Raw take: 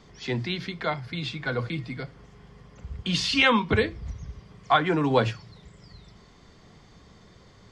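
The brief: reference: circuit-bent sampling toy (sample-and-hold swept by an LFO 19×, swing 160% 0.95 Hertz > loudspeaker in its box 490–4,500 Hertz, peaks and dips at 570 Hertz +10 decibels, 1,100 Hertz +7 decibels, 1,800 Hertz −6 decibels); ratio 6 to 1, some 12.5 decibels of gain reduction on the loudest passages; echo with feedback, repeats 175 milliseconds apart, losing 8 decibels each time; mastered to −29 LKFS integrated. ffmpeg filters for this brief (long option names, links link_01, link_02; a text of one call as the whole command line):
ffmpeg -i in.wav -af "acompressor=threshold=-29dB:ratio=6,aecho=1:1:175|350|525|700|875:0.398|0.159|0.0637|0.0255|0.0102,acrusher=samples=19:mix=1:aa=0.000001:lfo=1:lforange=30.4:lforate=0.95,highpass=490,equalizer=frequency=570:width_type=q:width=4:gain=10,equalizer=frequency=1100:width_type=q:width=4:gain=7,equalizer=frequency=1800:width_type=q:width=4:gain=-6,lowpass=frequency=4500:width=0.5412,lowpass=frequency=4500:width=1.3066,volume=6dB" out.wav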